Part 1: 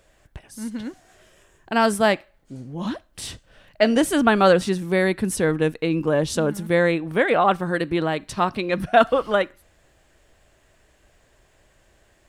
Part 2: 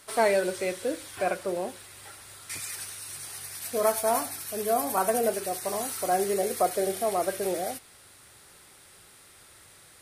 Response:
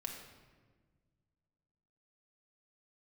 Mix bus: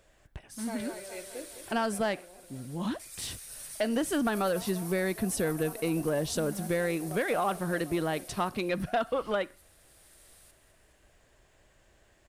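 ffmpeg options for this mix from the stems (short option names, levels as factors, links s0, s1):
-filter_complex "[0:a]acompressor=threshold=0.112:ratio=6,asoftclip=type=tanh:threshold=0.188,volume=0.596,asplit=2[s0][s1];[1:a]highshelf=f=3700:g=10.5,adelay=500,volume=0.237,asplit=2[s2][s3];[s3]volume=0.266[s4];[s1]apad=whole_len=463503[s5];[s2][s5]sidechaincompress=threshold=0.0158:ratio=8:attack=5.5:release=887[s6];[s4]aecho=0:1:207|414|621|828|1035|1242|1449|1656|1863:1|0.58|0.336|0.195|0.113|0.0656|0.0381|0.0221|0.0128[s7];[s0][s6][s7]amix=inputs=3:normalize=0"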